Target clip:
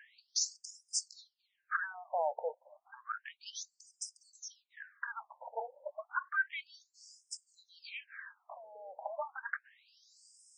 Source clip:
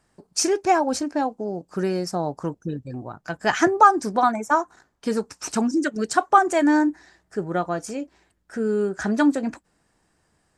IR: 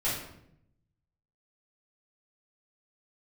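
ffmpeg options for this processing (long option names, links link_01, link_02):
-af "equalizer=frequency=1600:width_type=o:width=0.25:gain=12,acompressor=threshold=-38dB:ratio=3,alimiter=level_in=8dB:limit=-24dB:level=0:latency=1:release=151,volume=-8dB,afftfilt=real='re*between(b*sr/1024,650*pow(7000/650,0.5+0.5*sin(2*PI*0.31*pts/sr))/1.41,650*pow(7000/650,0.5+0.5*sin(2*PI*0.31*pts/sr))*1.41)':imag='im*between(b*sr/1024,650*pow(7000/650,0.5+0.5*sin(2*PI*0.31*pts/sr))/1.41,650*pow(7000/650,0.5+0.5*sin(2*PI*0.31*pts/sr))*1.41)':win_size=1024:overlap=0.75,volume=13dB"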